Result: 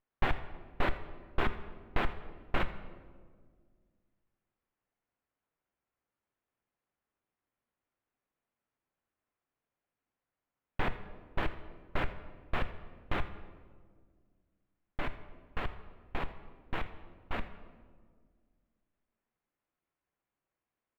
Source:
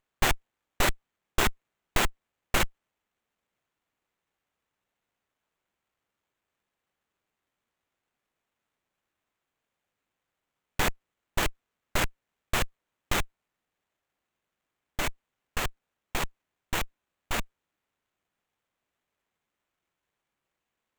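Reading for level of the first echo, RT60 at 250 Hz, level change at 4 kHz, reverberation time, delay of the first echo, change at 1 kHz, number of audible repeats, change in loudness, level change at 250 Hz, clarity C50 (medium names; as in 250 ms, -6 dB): -18.5 dB, 2.5 s, -13.5 dB, 1.8 s, 83 ms, -5.5 dB, 1, -8.0 dB, -4.0 dB, 12.0 dB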